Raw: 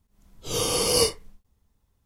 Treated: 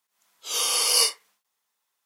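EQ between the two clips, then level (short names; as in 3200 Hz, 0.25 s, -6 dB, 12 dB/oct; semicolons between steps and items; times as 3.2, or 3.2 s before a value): HPF 1100 Hz 12 dB/oct; +3.5 dB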